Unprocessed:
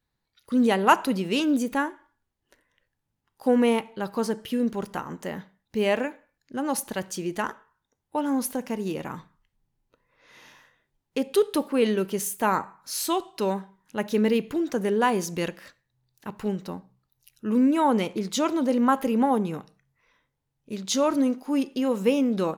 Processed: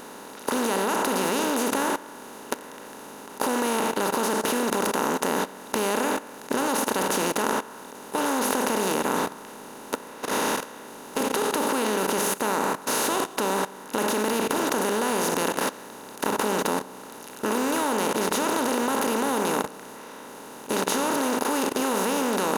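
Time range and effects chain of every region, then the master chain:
9.05–11.21 s: upward compressor, threshold -42 dBFS + three bands expanded up and down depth 40%
whole clip: spectral levelling over time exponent 0.2; treble shelf 5.2 kHz +6 dB; level held to a coarse grid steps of 17 dB; trim -7.5 dB

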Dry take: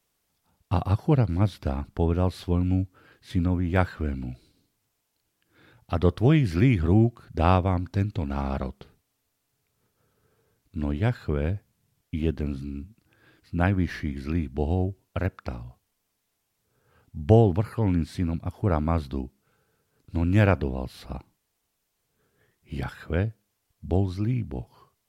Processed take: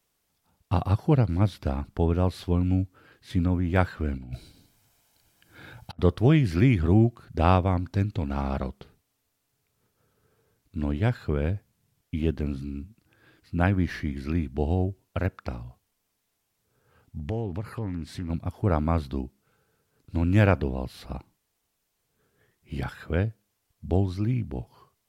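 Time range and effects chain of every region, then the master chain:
4.17–5.99 s: comb 1.3 ms, depth 34% + compressor with a negative ratio -38 dBFS, ratio -0.5
17.19–18.30 s: compression 3:1, threshold -30 dBFS + loudspeaker Doppler distortion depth 0.33 ms
whole clip: none

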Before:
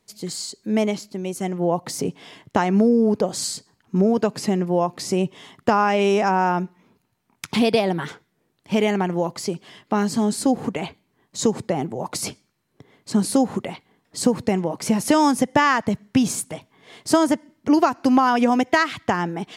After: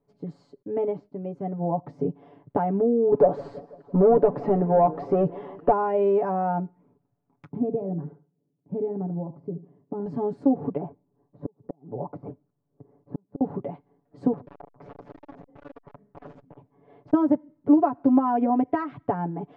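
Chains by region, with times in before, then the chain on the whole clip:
0.62–2.09 s: expander -46 dBFS + treble shelf 9.2 kHz -9.5 dB
3.12–5.72 s: overdrive pedal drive 22 dB, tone 1.4 kHz, clips at -4.5 dBFS + modulated delay 167 ms, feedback 58%, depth 205 cents, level -19 dB
7.48–10.06 s: band-pass filter 200 Hz, Q 1.1 + feedback delay 74 ms, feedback 24%, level -14.5 dB
10.77–13.41 s: low-pass 1.2 kHz + inverted gate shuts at -15 dBFS, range -38 dB
14.33–17.13 s: integer overflow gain 21.5 dB + distance through air 100 m + transformer saturation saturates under 1 kHz
whole clip: Chebyshev low-pass 660 Hz, order 2; comb 7 ms, depth 87%; trim -4.5 dB

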